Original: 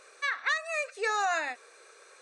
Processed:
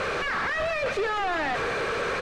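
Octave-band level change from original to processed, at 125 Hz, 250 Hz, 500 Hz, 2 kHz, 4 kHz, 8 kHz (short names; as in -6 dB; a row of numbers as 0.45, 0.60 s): n/a, +18.0 dB, +9.5 dB, +3.5 dB, +5.0 dB, -2.5 dB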